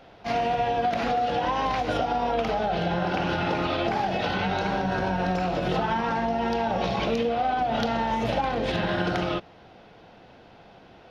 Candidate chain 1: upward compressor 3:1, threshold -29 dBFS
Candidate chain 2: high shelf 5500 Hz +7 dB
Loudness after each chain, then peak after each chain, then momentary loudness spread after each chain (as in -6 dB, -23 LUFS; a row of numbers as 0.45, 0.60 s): -26.0, -26.0 LUFS; -12.5, -11.0 dBFS; 14, 1 LU